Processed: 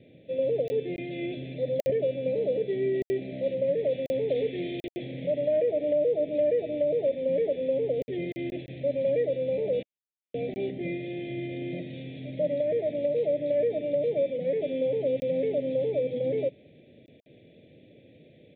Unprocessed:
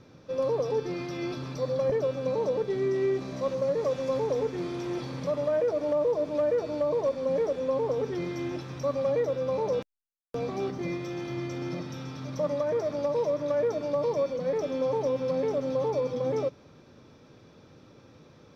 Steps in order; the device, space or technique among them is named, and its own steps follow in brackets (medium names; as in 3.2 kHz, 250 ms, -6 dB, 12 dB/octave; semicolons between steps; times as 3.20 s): call with lost packets (high-pass 160 Hz 6 dB/octave; resampled via 8 kHz; lost packets of 20 ms bursts); elliptic band-stop 650–2000 Hz, stop band 60 dB; 4.29–4.87 s: treble shelf 2.6 kHz +10 dB; trim +2 dB